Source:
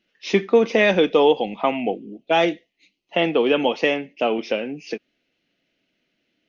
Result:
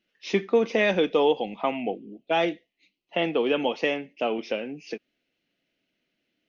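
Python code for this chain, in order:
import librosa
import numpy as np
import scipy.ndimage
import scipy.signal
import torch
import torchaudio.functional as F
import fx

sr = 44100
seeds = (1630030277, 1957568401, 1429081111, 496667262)

y = fx.lowpass(x, sr, hz=5600.0, slope=12, at=(1.83, 3.22))
y = y * 10.0 ** (-5.5 / 20.0)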